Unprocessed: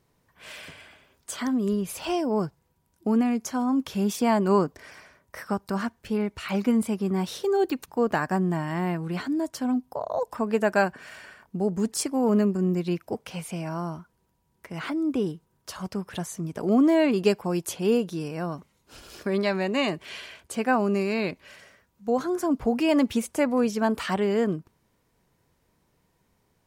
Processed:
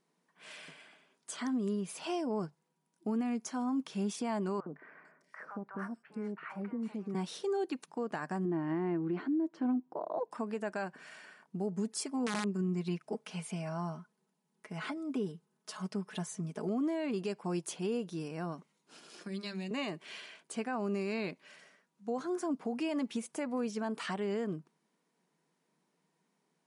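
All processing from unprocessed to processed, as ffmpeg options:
ffmpeg -i in.wav -filter_complex "[0:a]asettb=1/sr,asplit=3[link_01][link_02][link_03];[link_01]atrim=end=4.604[link_04];[link_02]atrim=start=4.6:end=7.15,asetpts=PTS-STARTPTS,afade=type=in:duration=0.004:curve=qsin,afade=type=out:start_time=2.546:duration=0.004:curve=qsin,highshelf=frequency=2400:width_type=q:width=1.5:gain=-12,acompressor=threshold=-27dB:ratio=4:attack=3.2:release=140:knee=1:detection=peak,acrossover=split=750|3200[link_05][link_06][link_07];[link_05]adelay=60[link_08];[link_07]adelay=450[link_09];[link_08][link_06][link_09]amix=inputs=3:normalize=0,atrim=end_sample=112455[link_10];[link_03]atrim=start=7.146[link_11];[link_04][link_10]acrossfade=duration=0.004:curve1=hsin:curve2=qsin[link_12];[link_12][link_11]acrossfade=duration=0.004:curve1=qsin:curve2=hsin,asettb=1/sr,asplit=3[link_13][link_14][link_15];[link_13]atrim=end=8.454[link_16];[link_14]atrim=start=8.45:end=10.31,asetpts=PTS-STARTPTS,afade=type=in:duration=0.004:curve=qsin,afade=type=out:start_time=1.856:duration=0.004:curve=qsin,lowpass=2300,equalizer=frequency=330:width=3.5:gain=14[link_17];[link_15]atrim=start=10.306[link_18];[link_16][link_17]acrossfade=duration=0.004:curve1=hsin:curve2=qsin[link_19];[link_19][link_18]acrossfade=duration=0.004:curve1=qsin:curve2=hsin,asettb=1/sr,asplit=3[link_20][link_21][link_22];[link_20]atrim=end=11.664[link_23];[link_21]atrim=start=11.66:end=16.68,asetpts=PTS-STARTPTS,afade=type=in:duration=0.004:curve=qsin,afade=type=out:start_time=5.016:duration=0.004:curve=qsin,aecho=1:1:4.7:0.56,atrim=end_sample=221382,aeval=exprs='(mod(3.76*val(0)+1,2)-1)/3.76':channel_layout=same[link_24];[link_22]atrim=start=16.676[link_25];[link_23][link_24]acrossfade=duration=0.004:curve1=hsin:curve2=qsin[link_26];[link_26][link_25]acrossfade=duration=0.004:curve1=qsin:curve2=hsin,asettb=1/sr,asplit=3[link_27][link_28][link_29];[link_27]atrim=end=19.174[link_30];[link_28]atrim=start=19.17:end=19.71,asetpts=PTS-STARTPTS,afade=type=in:duration=0.004:curve=qsin,afade=type=out:start_time=0.536:duration=0.004:curve=qsin,bandreject=frequency=50:width_type=h:width=6,bandreject=frequency=100:width_type=h:width=6,bandreject=frequency=150:width_type=h:width=6,bandreject=frequency=200:width_type=h:width=6,bandreject=frequency=250:width_type=h:width=6,bandreject=frequency=300:width_type=h:width=6,bandreject=frequency=350:width_type=h:width=6,bandreject=frequency=400:width_type=h:width=6,bandreject=frequency=450:width_type=h:width=6,aecho=1:1:5.7:0.55,atrim=end_sample=23814,acrossover=split=190|3000[link_31][link_32][link_33];[link_32]acompressor=threshold=-39dB:ratio=4:attack=3.2:release=140:knee=2.83:detection=peak[link_34];[link_31][link_34][link_33]amix=inputs=3:normalize=0[link_35];[link_29]atrim=start=19.706[link_36];[link_30][link_35]acrossfade=duration=0.004:curve1=hsin:curve2=qsin[link_37];[link_37][link_36]acrossfade=duration=0.004:curve1=qsin:curve2=hsin,afftfilt=real='re*between(b*sr/4096,140,11000)':imag='im*between(b*sr/4096,140,11000)':win_size=4096:overlap=0.75,bandreject=frequency=540:width=12,alimiter=limit=-19dB:level=0:latency=1:release=182,volume=-7.5dB" out.wav

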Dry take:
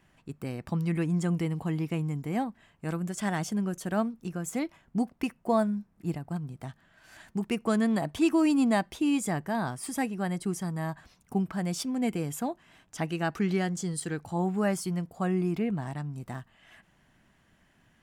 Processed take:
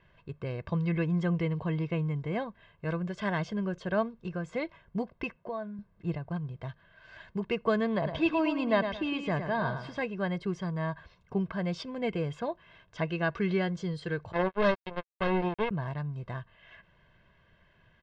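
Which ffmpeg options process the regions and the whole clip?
ffmpeg -i in.wav -filter_complex "[0:a]asettb=1/sr,asplit=3[link_01][link_02][link_03];[link_01]atrim=end=5.364[link_04];[link_02]atrim=start=5.36:end=5.79,asetpts=PTS-STARTPTS,afade=type=in:duration=0.004:curve=qsin,afade=type=out:start_time=0.426:duration=0.004:curve=qsin,highpass=110,lowpass=5000,acompressor=threshold=-37dB:ratio=3:attack=3.2:release=140:knee=1:detection=peak[link_05];[link_03]atrim=start=5.786[link_06];[link_04][link_05]acrossfade=duration=0.004:curve1=hsin:curve2=qsin[link_07];[link_07][link_06]acrossfade=duration=0.004:curve1=qsin:curve2=hsin,asettb=1/sr,asplit=3[link_08][link_09][link_10];[link_08]atrim=end=7.954[link_11];[link_09]atrim=start=7.95:end=10.02,asetpts=PTS-STARTPTS,afade=type=in:duration=0.004:curve=qsin,afade=type=out:start_time=2.066:duration=0.004:curve=qsin,lowpass=5800,aecho=1:1:109|218|327:0.398|0.115|0.0335,atrim=end_sample=91287[link_12];[link_10]atrim=start=10.016[link_13];[link_11][link_12]acrossfade=duration=0.004:curve1=hsin:curve2=qsin[link_14];[link_14][link_13]acrossfade=duration=0.004:curve1=qsin:curve2=hsin,asettb=1/sr,asplit=3[link_15][link_16][link_17];[link_15]atrim=end=14.324[link_18];[link_16]atrim=start=14.32:end=15.71,asetpts=PTS-STARTPTS,afade=type=in:duration=0.004:curve=qsin,afade=type=out:start_time=1.386:duration=0.004:curve=qsin,lowpass=frequency=4500:width=0.5412,lowpass=frequency=4500:width=1.3066,acrusher=bits=3:mix=0:aa=0.5[link_19];[link_17]atrim=start=15.706[link_20];[link_18][link_19]acrossfade=duration=0.004:curve1=hsin:curve2=qsin[link_21];[link_21][link_20]acrossfade=duration=0.004:curve1=qsin:curve2=hsin,lowpass=frequency=4000:width=0.5412,lowpass=frequency=4000:width=1.3066,bandreject=frequency=2400:width=20,aecho=1:1:1.9:0.67" out.wav

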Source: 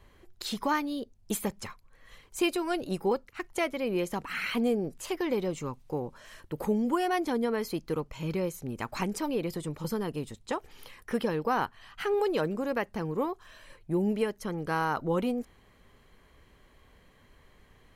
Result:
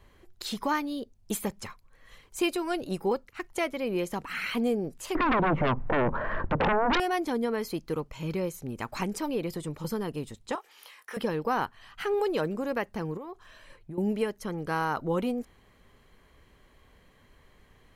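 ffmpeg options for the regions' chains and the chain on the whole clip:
ffmpeg -i in.wav -filter_complex "[0:a]asettb=1/sr,asplit=3[link_01][link_02][link_03];[link_01]atrim=end=5.154[link_04];[link_02]atrim=start=5.15:end=7,asetpts=PTS-STARTPTS,afade=type=in:duration=0.004:curve=qsin,afade=type=out:start_time=1.846:duration=0.004:curve=qsin,lowpass=frequency=1500:width=0.5412,lowpass=frequency=1500:width=1.3066,acompressor=threshold=-42dB:ratio=2:attack=3.2:release=140:knee=1:detection=peak,aeval=exprs='0.0891*sin(PI/2*10*val(0)/0.0891)':channel_layout=same[link_05];[link_03]atrim=start=6.996[link_06];[link_04][link_05]acrossfade=duration=0.004:curve1=hsin:curve2=qsin[link_07];[link_07][link_06]acrossfade=duration=0.004:curve1=qsin:curve2=hsin,asettb=1/sr,asplit=3[link_08][link_09][link_10];[link_08]atrim=end=10.554[link_11];[link_09]atrim=start=10.55:end=11.17,asetpts=PTS-STARTPTS,afade=type=in:duration=0.004:curve=qsin,afade=type=out:start_time=0.616:duration=0.004:curve=qsin,highpass=750,asplit=2[link_12][link_13];[link_13]adelay=23,volume=-7dB[link_14];[link_12][link_14]amix=inputs=2:normalize=0,atrim=end_sample=27342[link_15];[link_10]atrim=start=11.166[link_16];[link_11][link_15]acrossfade=duration=0.004:curve1=hsin:curve2=qsin[link_17];[link_17][link_16]acrossfade=duration=0.004:curve1=qsin:curve2=hsin,asettb=1/sr,asplit=3[link_18][link_19][link_20];[link_18]atrim=end=13.174[link_21];[link_19]atrim=start=13.17:end=13.98,asetpts=PTS-STARTPTS,afade=type=in:duration=0.004:curve=qsin,afade=type=out:start_time=0.806:duration=0.004:curve=qsin,highshelf=frequency=6300:gain=-5,acompressor=threshold=-36dB:ratio=16:attack=3.2:release=140:knee=1:detection=peak[link_22];[link_20]atrim=start=13.976[link_23];[link_21][link_22]acrossfade=duration=0.004:curve1=hsin:curve2=qsin[link_24];[link_24][link_23]acrossfade=duration=0.004:curve1=qsin:curve2=hsin" out.wav

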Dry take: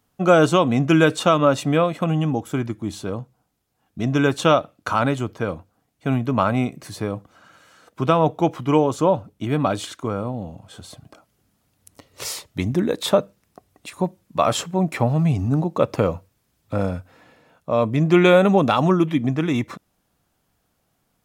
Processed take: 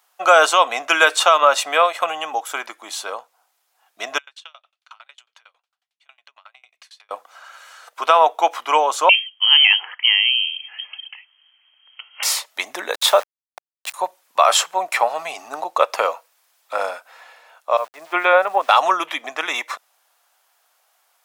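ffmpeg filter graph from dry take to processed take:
ffmpeg -i in.wav -filter_complex "[0:a]asettb=1/sr,asplit=3[link_01][link_02][link_03];[link_01]atrim=end=4.184[link_04];[link_02]atrim=start=4.18:end=7.11,asetpts=PTS-STARTPTS,afade=type=in:duration=0.004:curve=qsin,afade=type=out:start_time=2.926:duration=0.004:curve=qsin,acompressor=threshold=-34dB:ratio=3:attack=3.2:release=140:knee=1:detection=peak,bandpass=frequency=3200:width_type=q:width=1.5,aeval=exprs='val(0)*pow(10,-32*if(lt(mod(11*n/s,1),2*abs(11)/1000),1-mod(11*n/s,1)/(2*abs(11)/1000),(mod(11*n/s,1)-2*abs(11)/1000)/(1-2*abs(11)/1000))/20)':channel_layout=same[link_05];[link_03]atrim=start=7.106[link_06];[link_04][link_05]acrossfade=duration=0.004:curve1=hsin:curve2=qsin[link_07];[link_07][link_06]acrossfade=duration=0.004:curve1=qsin:curve2=hsin,asettb=1/sr,asplit=3[link_08][link_09][link_10];[link_08]atrim=end=9.094[link_11];[link_09]atrim=start=9.09:end=12.23,asetpts=PTS-STARTPTS,afade=type=in:duration=0.004:curve=qsin,afade=type=out:start_time=3.136:duration=0.004:curve=qsin,lowpass=frequency=2800:width_type=q:width=0.5098,lowpass=frequency=2800:width_type=q:width=0.6013,lowpass=frequency=2800:width_type=q:width=0.9,lowpass=frequency=2800:width_type=q:width=2.563,afreqshift=-3300,equalizer=frequency=230:width=0.32:gain=-4.5[link_12];[link_10]atrim=start=12.226[link_13];[link_11][link_12]acrossfade=duration=0.004:curve1=hsin:curve2=qsin[link_14];[link_14][link_13]acrossfade=duration=0.004:curve1=qsin:curve2=hsin,asettb=1/sr,asplit=3[link_15][link_16][link_17];[link_15]atrim=end=12.944[link_18];[link_16]atrim=start=12.94:end=13.94,asetpts=PTS-STARTPTS,afade=type=in:duration=0.004:curve=qsin,afade=type=out:start_time=0.996:duration=0.004:curve=qsin,bandreject=frequency=7800:width=29,aeval=exprs='val(0)*gte(abs(val(0)),0.02)':channel_layout=same[link_19];[link_17]atrim=start=13.936[link_20];[link_18][link_19]acrossfade=duration=0.004:curve1=hsin:curve2=qsin[link_21];[link_21][link_20]acrossfade=duration=0.004:curve1=qsin:curve2=hsin,asettb=1/sr,asplit=3[link_22][link_23][link_24];[link_22]atrim=end=17.774[link_25];[link_23]atrim=start=17.77:end=18.69,asetpts=PTS-STARTPTS,afade=type=in:duration=0.004:curve=qsin,afade=type=out:start_time=0.916:duration=0.004:curve=qsin,agate=range=-33dB:threshold=-11dB:ratio=3:release=100:detection=peak,lowpass=1800,aeval=exprs='val(0)*gte(abs(val(0)),0.00596)':channel_layout=same[link_26];[link_24]atrim=start=18.686[link_27];[link_25][link_26]acrossfade=duration=0.004:curve1=hsin:curve2=qsin[link_28];[link_28][link_27]acrossfade=duration=0.004:curve1=qsin:curve2=hsin,highpass=frequency=700:width=0.5412,highpass=frequency=700:width=1.3066,alimiter=level_in=10.5dB:limit=-1dB:release=50:level=0:latency=1,volume=-1dB" out.wav

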